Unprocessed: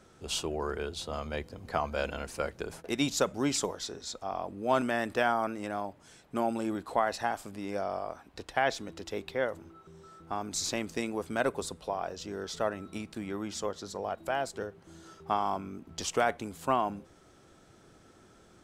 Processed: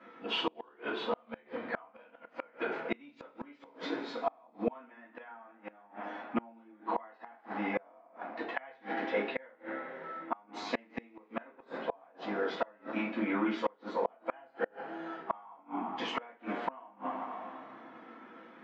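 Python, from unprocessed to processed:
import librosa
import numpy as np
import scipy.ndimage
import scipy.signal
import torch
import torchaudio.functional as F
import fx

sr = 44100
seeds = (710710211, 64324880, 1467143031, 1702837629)

y = fx.spec_quant(x, sr, step_db=15)
y = fx.cabinet(y, sr, low_hz=230.0, low_slope=24, high_hz=2700.0, hz=(240.0, 390.0, 560.0, 840.0, 1900.0), db=(4, -5, -4, 4, 5))
y = fx.hum_notches(y, sr, base_hz=60, count=7)
y = fx.rev_double_slope(y, sr, seeds[0], early_s=0.29, late_s=2.5, knee_db=-20, drr_db=-8.5)
y = fx.gate_flip(y, sr, shuts_db=-19.0, range_db=-32)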